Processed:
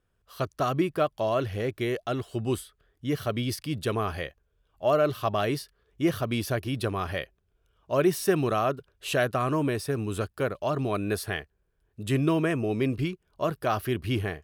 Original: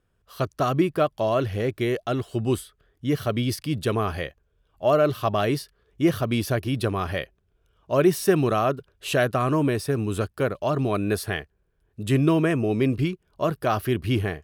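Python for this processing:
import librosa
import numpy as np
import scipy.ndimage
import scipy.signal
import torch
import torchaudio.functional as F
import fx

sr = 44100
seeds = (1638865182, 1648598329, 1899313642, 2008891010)

y = fx.peak_eq(x, sr, hz=180.0, db=-2.5, octaves=2.7)
y = y * librosa.db_to_amplitude(-2.5)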